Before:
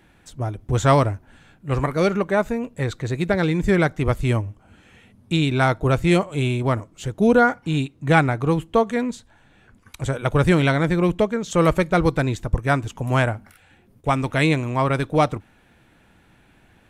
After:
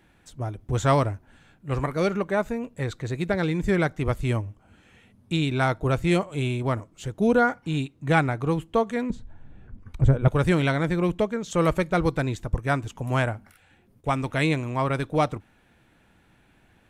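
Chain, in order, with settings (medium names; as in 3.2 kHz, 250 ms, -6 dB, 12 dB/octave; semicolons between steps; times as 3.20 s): 9.10–10.28 s: tilt EQ -4 dB/octave; trim -4.5 dB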